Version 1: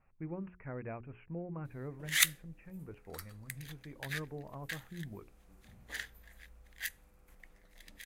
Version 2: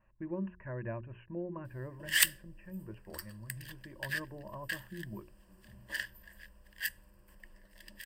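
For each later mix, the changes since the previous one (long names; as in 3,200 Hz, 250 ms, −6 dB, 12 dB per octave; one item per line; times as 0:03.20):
master: add EQ curve with evenly spaced ripples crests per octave 1.3, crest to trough 14 dB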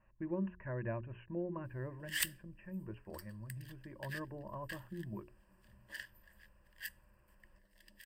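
background −9.5 dB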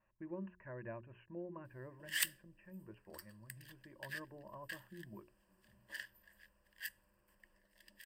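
speech −5.5 dB
master: add low-shelf EQ 130 Hz −10.5 dB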